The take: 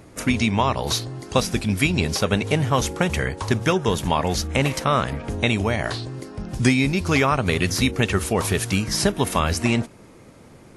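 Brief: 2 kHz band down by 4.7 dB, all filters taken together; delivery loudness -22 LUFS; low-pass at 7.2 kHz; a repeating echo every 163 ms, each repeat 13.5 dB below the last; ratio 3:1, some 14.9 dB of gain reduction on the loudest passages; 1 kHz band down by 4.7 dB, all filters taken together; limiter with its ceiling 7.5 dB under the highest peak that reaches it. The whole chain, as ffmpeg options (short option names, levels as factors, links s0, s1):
-af "lowpass=7200,equalizer=f=1000:t=o:g=-4.5,equalizer=f=2000:t=o:g=-5,acompressor=threshold=0.0141:ratio=3,alimiter=level_in=1.5:limit=0.0631:level=0:latency=1,volume=0.668,aecho=1:1:163|326:0.211|0.0444,volume=6.31"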